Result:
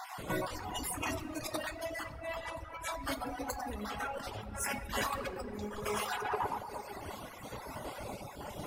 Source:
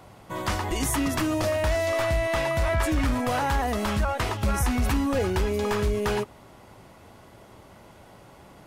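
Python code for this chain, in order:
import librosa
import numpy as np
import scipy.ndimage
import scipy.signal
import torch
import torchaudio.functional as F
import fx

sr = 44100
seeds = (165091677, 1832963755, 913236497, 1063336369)

y = fx.spec_dropout(x, sr, seeds[0], share_pct=39)
y = fx.low_shelf(y, sr, hz=340.0, db=-3.5)
y = fx.echo_banded(y, sr, ms=115, feedback_pct=62, hz=770.0, wet_db=-4.5)
y = fx.over_compress(y, sr, threshold_db=-39.0, ratio=-1.0)
y = fx.high_shelf(y, sr, hz=11000.0, db=6.5)
y = fx.room_shoebox(y, sr, seeds[1], volume_m3=210.0, walls='hard', distance_m=0.43)
y = fx.dereverb_blind(y, sr, rt60_s=2.0)
y = 10.0 ** (-23.5 / 20.0) * np.tanh(y / 10.0 ** (-23.5 / 20.0))
y = fx.am_noise(y, sr, seeds[2], hz=5.7, depth_pct=50)
y = F.gain(torch.from_numpy(y), 2.5).numpy()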